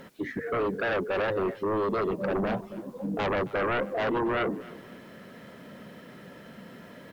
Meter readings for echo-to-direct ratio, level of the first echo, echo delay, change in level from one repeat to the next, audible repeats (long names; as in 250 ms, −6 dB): −19.5 dB, −20.0 dB, 270 ms, −8.5 dB, 2